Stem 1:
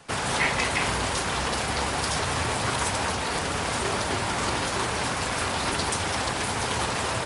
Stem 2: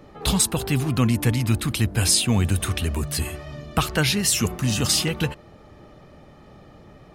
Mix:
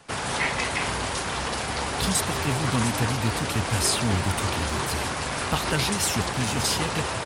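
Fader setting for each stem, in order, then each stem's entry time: -1.5 dB, -5.5 dB; 0.00 s, 1.75 s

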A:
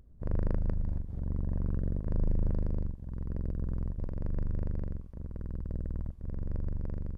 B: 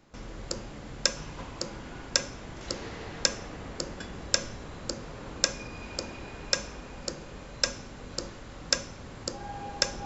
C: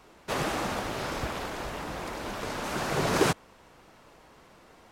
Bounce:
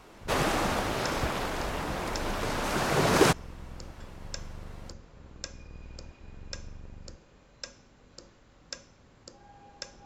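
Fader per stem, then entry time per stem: -11.0 dB, -14.5 dB, +2.5 dB; 0.00 s, 0.00 s, 0.00 s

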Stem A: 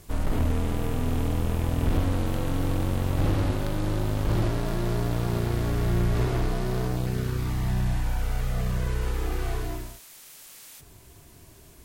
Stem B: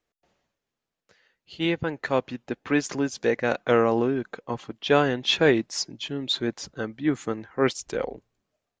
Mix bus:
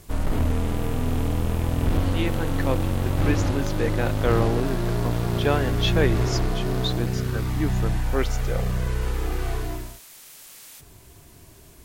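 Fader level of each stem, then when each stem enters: +2.0 dB, -3.5 dB; 0.00 s, 0.55 s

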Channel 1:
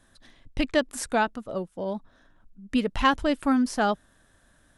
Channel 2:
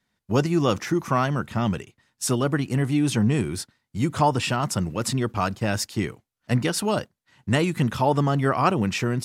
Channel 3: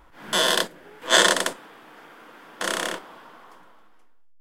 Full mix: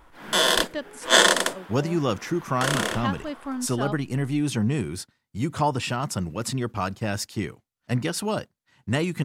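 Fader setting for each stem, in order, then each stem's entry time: -9.0 dB, -3.0 dB, +0.5 dB; 0.00 s, 1.40 s, 0.00 s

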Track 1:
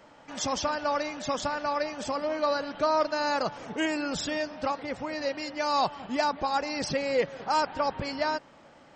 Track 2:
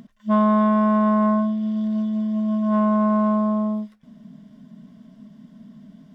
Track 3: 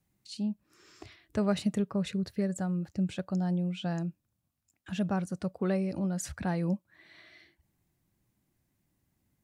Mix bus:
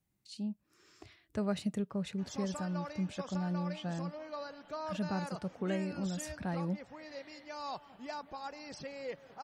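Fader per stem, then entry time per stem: -15.5 dB, mute, -5.5 dB; 1.90 s, mute, 0.00 s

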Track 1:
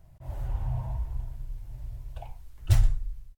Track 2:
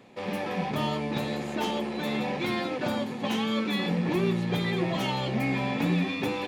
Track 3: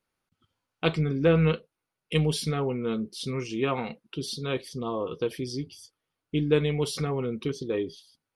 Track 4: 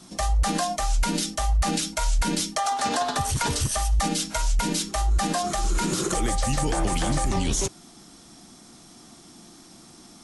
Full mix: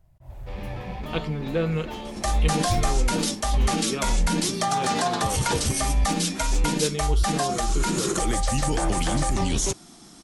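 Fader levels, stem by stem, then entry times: -5.0 dB, -6.5 dB, -4.0 dB, +0.5 dB; 0.00 s, 0.30 s, 0.30 s, 2.05 s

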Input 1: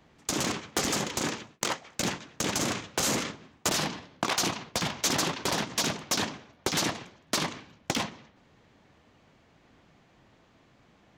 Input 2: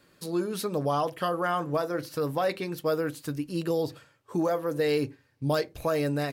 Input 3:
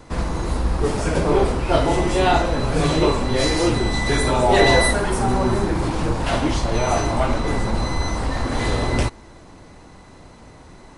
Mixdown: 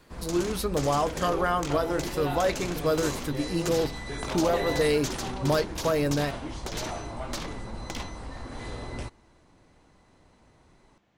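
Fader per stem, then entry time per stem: -8.5 dB, +1.5 dB, -16.0 dB; 0.00 s, 0.00 s, 0.00 s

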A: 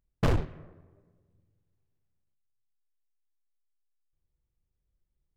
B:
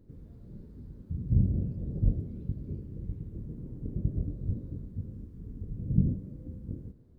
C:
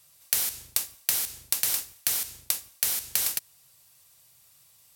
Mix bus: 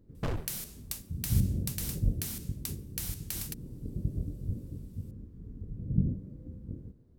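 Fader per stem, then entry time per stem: -8.0 dB, -2.5 dB, -12.0 dB; 0.00 s, 0.00 s, 0.15 s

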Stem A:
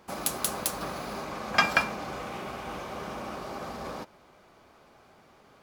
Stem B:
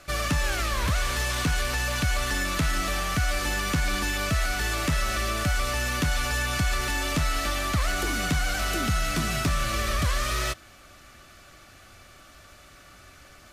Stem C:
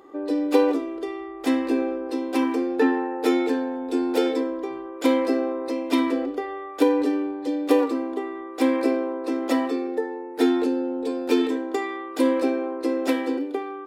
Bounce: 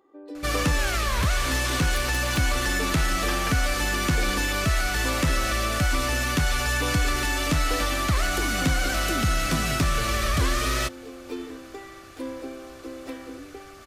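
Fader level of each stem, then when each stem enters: -13.5 dB, +2.0 dB, -14.0 dB; 1.70 s, 0.35 s, 0.00 s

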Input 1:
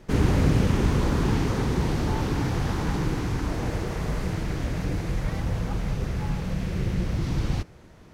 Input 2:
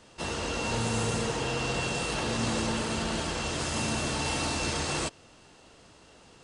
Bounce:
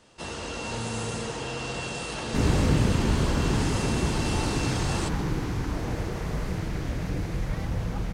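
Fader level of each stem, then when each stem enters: -2.0 dB, -2.5 dB; 2.25 s, 0.00 s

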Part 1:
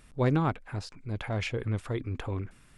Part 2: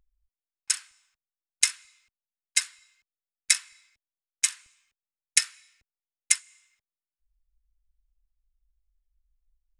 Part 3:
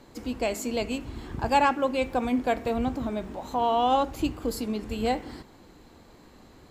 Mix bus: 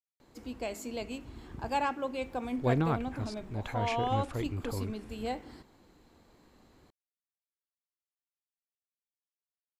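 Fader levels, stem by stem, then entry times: -3.0 dB, mute, -9.0 dB; 2.45 s, mute, 0.20 s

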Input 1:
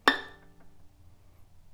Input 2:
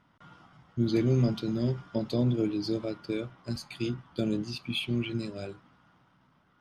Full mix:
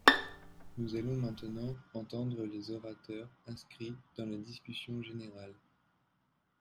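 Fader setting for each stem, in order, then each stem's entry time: 0.0 dB, -11.5 dB; 0.00 s, 0.00 s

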